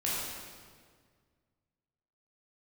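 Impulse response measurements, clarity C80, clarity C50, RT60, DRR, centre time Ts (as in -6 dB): 0.0 dB, -2.5 dB, 1.8 s, -7.5 dB, 0.118 s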